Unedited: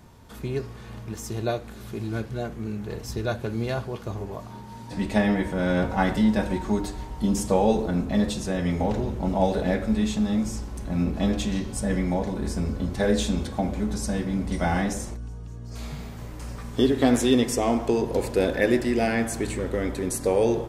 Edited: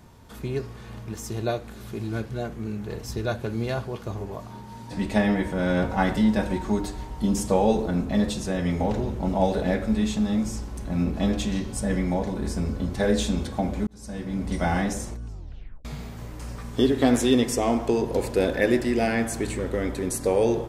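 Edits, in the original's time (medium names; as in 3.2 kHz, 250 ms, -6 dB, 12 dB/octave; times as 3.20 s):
13.87–14.50 s: fade in
15.26 s: tape stop 0.59 s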